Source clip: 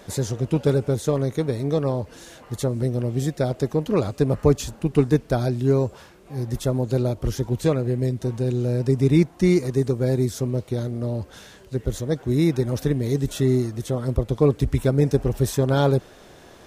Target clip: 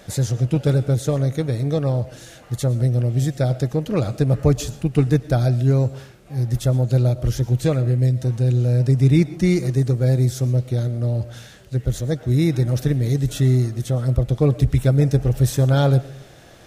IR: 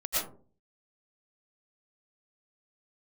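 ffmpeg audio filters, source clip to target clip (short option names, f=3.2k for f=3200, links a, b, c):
-filter_complex "[0:a]equalizer=f=125:t=o:w=0.33:g=6,equalizer=f=250:t=o:w=0.33:g=-4,equalizer=f=400:t=o:w=0.33:g=-7,equalizer=f=1k:t=o:w=0.33:g=-9,asplit=2[a][b];[1:a]atrim=start_sample=2205[c];[b][c]afir=irnorm=-1:irlink=0,volume=-23.5dB[d];[a][d]amix=inputs=2:normalize=0,volume=1.5dB"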